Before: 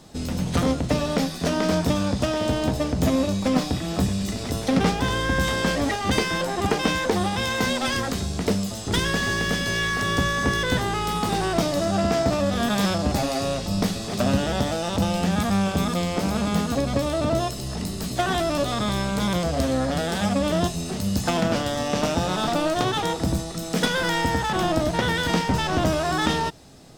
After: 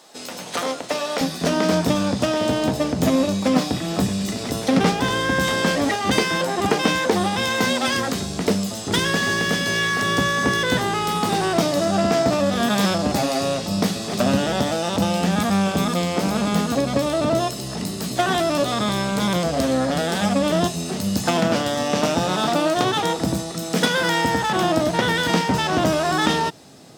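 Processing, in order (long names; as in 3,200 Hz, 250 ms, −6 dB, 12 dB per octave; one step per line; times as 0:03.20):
high-pass filter 550 Hz 12 dB per octave, from 0:01.21 140 Hz
level +3.5 dB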